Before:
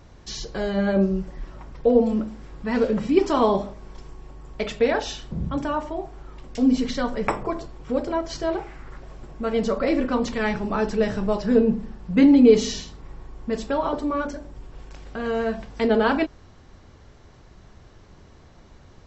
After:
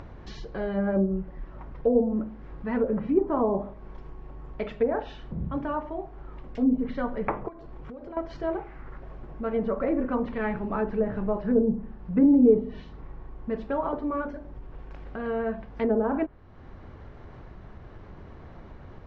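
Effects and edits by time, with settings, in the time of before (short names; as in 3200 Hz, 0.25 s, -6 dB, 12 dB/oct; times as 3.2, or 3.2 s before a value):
7.48–8.17 compressor 16:1, threshold -36 dBFS
whole clip: LPF 2000 Hz 12 dB/oct; treble ducked by the level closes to 710 Hz, closed at -15 dBFS; upward compressor, threshold -30 dBFS; gain -4 dB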